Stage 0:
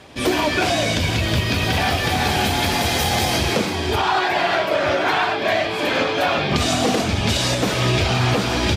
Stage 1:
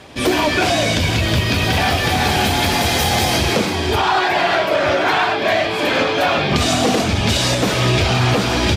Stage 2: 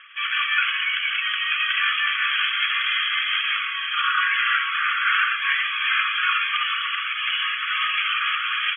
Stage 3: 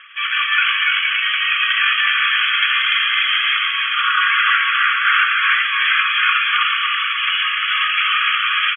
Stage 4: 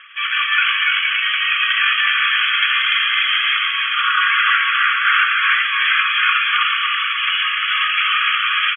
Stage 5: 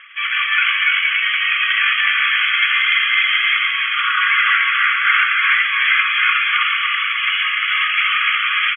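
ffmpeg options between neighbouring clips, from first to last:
-af "acontrast=67,volume=-3dB"
-af "afftfilt=real='re*between(b*sr/4096,1100,3400)':imag='im*between(b*sr/4096,1100,3400)':win_size=4096:overlap=0.75"
-af "aecho=1:1:296:0.668,volume=4.5dB"
-af anull
-af "equalizer=f=2.1k:w=6.2:g=9,volume=-2dB"

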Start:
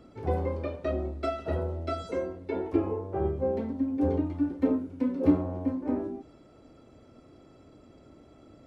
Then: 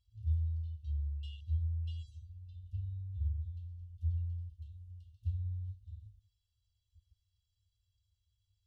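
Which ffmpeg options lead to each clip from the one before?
-af "afwtdn=0.0112,afftfilt=real='re*(1-between(b*sr/4096,110,2700))':imag='im*(1-between(b*sr/4096,110,2700))':win_size=4096:overlap=0.75"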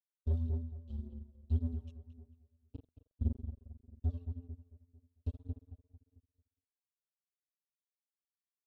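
-filter_complex "[0:a]acrusher=bits=4:mix=0:aa=0.5,asplit=2[a][b];[b]adelay=223,lowpass=f=1.9k:p=1,volume=-8dB,asplit=2[c][d];[d]adelay=223,lowpass=f=1.9k:p=1,volume=0.4,asplit=2[e][f];[f]adelay=223,lowpass=f=1.9k:p=1,volume=0.4,asplit=2[g][h];[h]adelay=223,lowpass=f=1.9k:p=1,volume=0.4,asplit=2[i][j];[j]adelay=223,lowpass=f=1.9k:p=1,volume=0.4[k];[a][c][e][g][i][k]amix=inputs=6:normalize=0,aphaser=in_gain=1:out_gain=1:delay=1.9:decay=0.49:speed=1.8:type=sinusoidal,volume=-3.5dB"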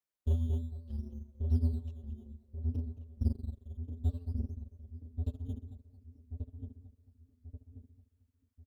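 -filter_complex "[0:a]asplit=2[a][b];[b]acrusher=samples=10:mix=1:aa=0.000001:lfo=1:lforange=6:lforate=0.59,volume=-8.5dB[c];[a][c]amix=inputs=2:normalize=0,asplit=2[d][e];[e]adelay=1134,lowpass=f=850:p=1,volume=-5dB,asplit=2[f][g];[g]adelay=1134,lowpass=f=850:p=1,volume=0.43,asplit=2[h][i];[i]adelay=1134,lowpass=f=850:p=1,volume=0.43,asplit=2[j][k];[k]adelay=1134,lowpass=f=850:p=1,volume=0.43,asplit=2[l][m];[m]adelay=1134,lowpass=f=850:p=1,volume=0.43[n];[d][f][h][j][l][n]amix=inputs=6:normalize=0"

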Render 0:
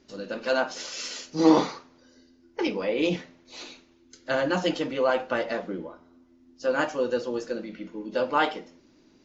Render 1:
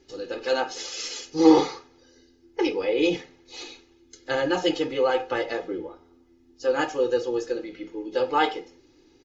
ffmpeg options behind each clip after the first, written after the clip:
-af "equalizer=f=1.2k:w=1.5:g=-3.5,aecho=1:1:2.4:0.88"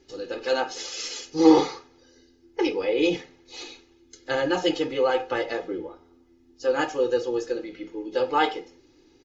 -af anull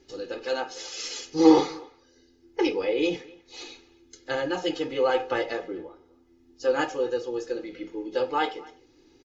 -filter_complex "[0:a]tremolo=f=0.76:d=0.42,asplit=2[a][b];[b]adelay=250,highpass=300,lowpass=3.4k,asoftclip=type=hard:threshold=-13dB,volume=-22dB[c];[a][c]amix=inputs=2:normalize=0"

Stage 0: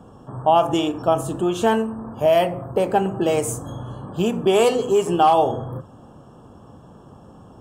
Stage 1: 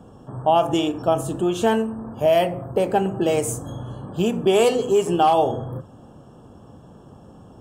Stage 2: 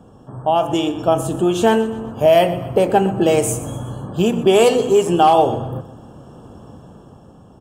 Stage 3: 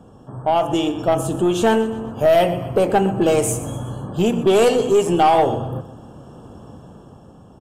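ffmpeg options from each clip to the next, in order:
-af "equalizer=f=1.1k:t=o:w=0.82:g=-4"
-af "dynaudnorm=f=140:g=13:m=7dB,aecho=1:1:124|248|372|496:0.168|0.0789|0.0371|0.0174"
-af "aeval=exprs='(tanh(2.24*val(0)+0.15)-tanh(0.15))/2.24':c=same,aresample=32000,aresample=44100"

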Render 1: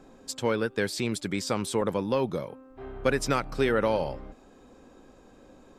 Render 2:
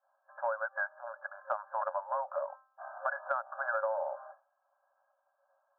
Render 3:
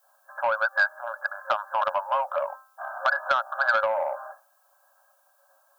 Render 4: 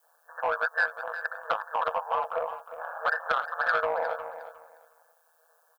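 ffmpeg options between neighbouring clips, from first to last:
-af "agate=range=-33dB:threshold=-40dB:ratio=3:detection=peak,afftfilt=real='re*between(b*sr/4096,540,1700)':imag='im*between(b*sr/4096,540,1700)':win_size=4096:overlap=0.75,acompressor=threshold=-35dB:ratio=6,volume=5dB"
-af "asoftclip=type=tanh:threshold=-22.5dB,crystalizer=i=9.5:c=0,volume=5.5dB"
-filter_complex "[0:a]aeval=exprs='val(0)*sin(2*PI*81*n/s)':c=same,asplit=2[a][b];[b]asoftclip=type=tanh:threshold=-24.5dB,volume=-7dB[c];[a][c]amix=inputs=2:normalize=0,aecho=1:1:358|716|1074:0.251|0.0502|0.01,volume=-2.5dB"

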